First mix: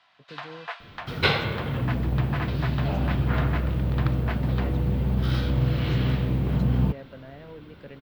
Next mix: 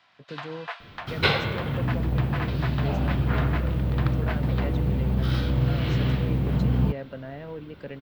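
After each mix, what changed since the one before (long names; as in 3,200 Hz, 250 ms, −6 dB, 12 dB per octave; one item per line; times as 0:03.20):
speech +6.0 dB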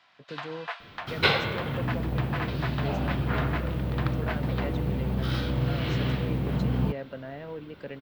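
master: add low-shelf EQ 150 Hz −7 dB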